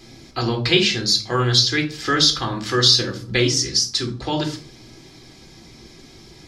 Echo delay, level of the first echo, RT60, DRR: none, none, 0.45 s, 2.5 dB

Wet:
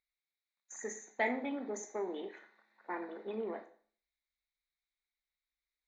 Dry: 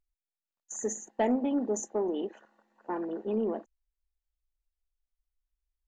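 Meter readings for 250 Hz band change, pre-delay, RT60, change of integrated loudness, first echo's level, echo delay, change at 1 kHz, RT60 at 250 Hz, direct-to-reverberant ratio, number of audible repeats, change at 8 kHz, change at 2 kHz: -11.0 dB, 14 ms, 0.50 s, -7.5 dB, none, none, -4.5 dB, 0.50 s, 6.5 dB, none, -9.0 dB, +7.0 dB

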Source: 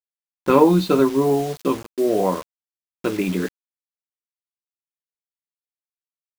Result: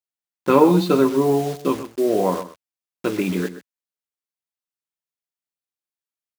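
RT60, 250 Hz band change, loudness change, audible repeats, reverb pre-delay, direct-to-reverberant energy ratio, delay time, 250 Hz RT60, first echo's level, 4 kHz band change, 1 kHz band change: none, 0.0 dB, 0.0 dB, 1, none, none, 0.127 s, none, -13.5 dB, 0.0 dB, 0.0 dB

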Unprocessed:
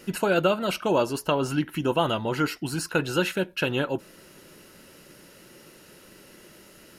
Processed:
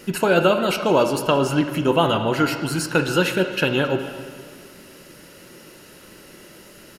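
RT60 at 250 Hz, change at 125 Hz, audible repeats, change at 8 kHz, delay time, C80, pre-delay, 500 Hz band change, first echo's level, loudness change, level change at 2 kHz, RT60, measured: 1.9 s, +5.5 dB, 1, +5.0 dB, 0.27 s, 9.0 dB, 9 ms, +6.0 dB, -18.0 dB, +6.0 dB, +6.0 dB, 1.8 s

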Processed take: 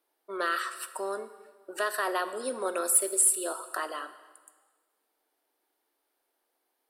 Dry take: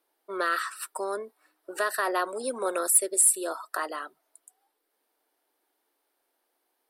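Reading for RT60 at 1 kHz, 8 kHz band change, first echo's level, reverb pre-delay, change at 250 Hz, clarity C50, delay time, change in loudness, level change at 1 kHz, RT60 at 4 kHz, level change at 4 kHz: 1.4 s, -2.0 dB, none, 5 ms, -2.0 dB, 12.5 dB, none, -2.0 dB, -2.0 dB, 1.3 s, 0.0 dB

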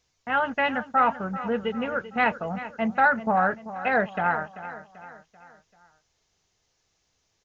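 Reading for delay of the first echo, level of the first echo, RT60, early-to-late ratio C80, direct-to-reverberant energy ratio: 0.388 s, -14.0 dB, none, none, none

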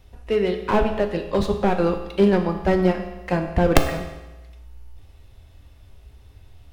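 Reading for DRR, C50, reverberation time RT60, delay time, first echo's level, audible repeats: 4.5 dB, 8.0 dB, 1.1 s, none, none, none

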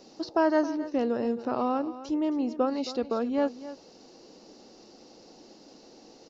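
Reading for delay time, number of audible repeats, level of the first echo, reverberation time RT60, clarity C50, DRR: 0.269 s, 1, -14.5 dB, none, none, none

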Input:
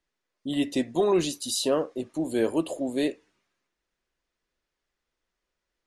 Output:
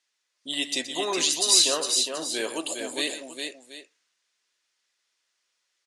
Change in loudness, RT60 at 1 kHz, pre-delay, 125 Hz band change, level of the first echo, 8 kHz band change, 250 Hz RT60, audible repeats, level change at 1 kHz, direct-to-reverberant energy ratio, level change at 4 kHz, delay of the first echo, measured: +3.5 dB, none, none, -14.5 dB, -12.0 dB, +12.5 dB, none, 3, +0.5 dB, none, +12.0 dB, 0.122 s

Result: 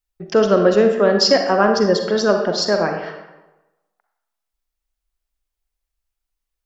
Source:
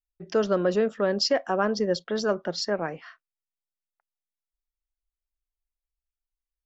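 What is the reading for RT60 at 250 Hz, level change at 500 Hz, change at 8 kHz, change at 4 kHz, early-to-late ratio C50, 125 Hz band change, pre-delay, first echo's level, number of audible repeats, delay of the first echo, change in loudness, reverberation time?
1.0 s, +10.0 dB, n/a, +9.5 dB, 5.0 dB, +9.0 dB, 38 ms, none, none, none, +10.0 dB, 1.1 s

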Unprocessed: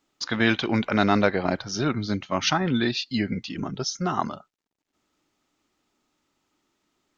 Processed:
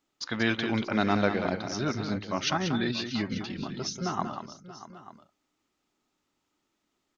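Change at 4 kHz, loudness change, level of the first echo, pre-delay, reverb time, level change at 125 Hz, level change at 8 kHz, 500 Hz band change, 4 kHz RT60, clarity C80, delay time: -4.5 dB, -4.5 dB, -8.0 dB, none, none, -4.5 dB, n/a, -4.5 dB, none, none, 0.186 s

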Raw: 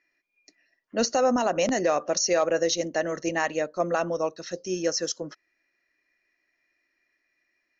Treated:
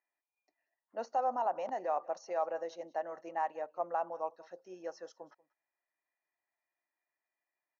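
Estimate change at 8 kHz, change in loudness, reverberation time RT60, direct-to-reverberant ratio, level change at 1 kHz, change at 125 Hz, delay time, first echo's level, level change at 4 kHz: n/a, -11.0 dB, none, none, -4.5 dB, under -25 dB, 0.188 s, -23.0 dB, -28.5 dB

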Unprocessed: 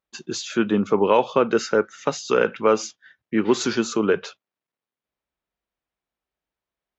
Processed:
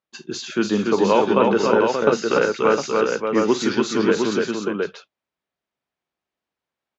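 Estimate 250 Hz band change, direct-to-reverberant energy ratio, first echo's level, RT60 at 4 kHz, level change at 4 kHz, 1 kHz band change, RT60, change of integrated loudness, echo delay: +3.0 dB, none, -13.5 dB, none, +2.5 dB, +3.0 dB, none, +2.0 dB, 47 ms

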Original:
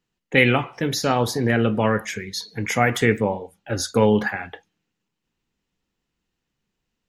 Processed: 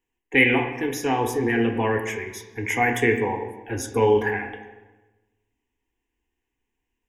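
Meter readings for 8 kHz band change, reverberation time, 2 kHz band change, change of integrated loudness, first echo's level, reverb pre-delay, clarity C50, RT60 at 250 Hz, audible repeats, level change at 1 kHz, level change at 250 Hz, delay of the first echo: -4.5 dB, 1.2 s, +0.5 dB, -1.5 dB, none, 3 ms, 8.0 dB, 1.4 s, none, -0.5 dB, -2.5 dB, none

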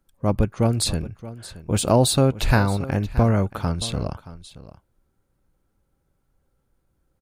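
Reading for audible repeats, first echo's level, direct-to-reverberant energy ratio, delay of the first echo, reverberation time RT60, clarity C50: 1, -16.5 dB, none, 0.625 s, none, none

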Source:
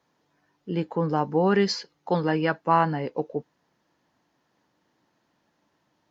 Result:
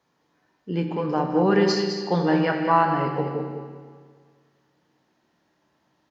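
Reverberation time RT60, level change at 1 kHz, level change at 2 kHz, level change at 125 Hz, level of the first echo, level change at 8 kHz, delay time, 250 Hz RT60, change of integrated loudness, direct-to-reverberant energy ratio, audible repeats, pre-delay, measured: 1.8 s, +2.5 dB, +2.5 dB, +2.0 dB, -8.5 dB, n/a, 0.207 s, 1.8 s, +2.5 dB, 1.5 dB, 1, 13 ms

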